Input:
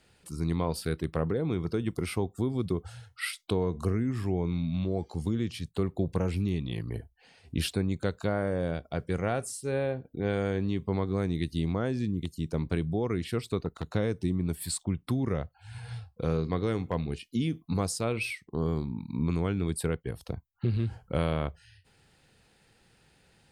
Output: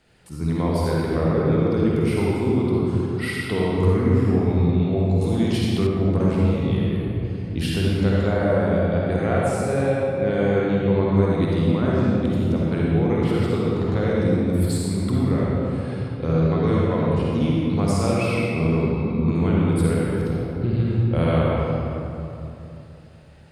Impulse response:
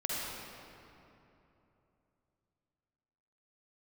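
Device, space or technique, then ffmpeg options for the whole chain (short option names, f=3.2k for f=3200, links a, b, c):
swimming-pool hall: -filter_complex "[1:a]atrim=start_sample=2205[a];[0:a][a]afir=irnorm=-1:irlink=0,highshelf=f=4.1k:g=-7,asettb=1/sr,asplit=3[b][c][d];[b]atrim=end=5.214[e];[c]atrim=start=5.21:end=5.87,asetpts=PTS-STARTPTS,afade=t=in:d=0.004:c=qsin,afade=t=out:st=0.656:d=0.004:c=qsin,highshelf=f=2.2k:g=10[f];[d]atrim=start=5.866[g];[e][f]acrossfade=d=0.004:c1=hsin:c2=qsin[h];[h][g]acrossfade=d=0.004:c1=qsin:c2=hsin,volume=4dB"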